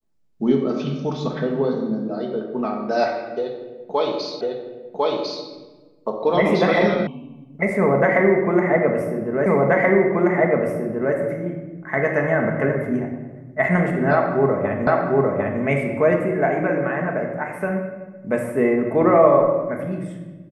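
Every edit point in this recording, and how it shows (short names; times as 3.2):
4.41 repeat of the last 1.05 s
7.07 sound cut off
9.46 repeat of the last 1.68 s
14.87 repeat of the last 0.75 s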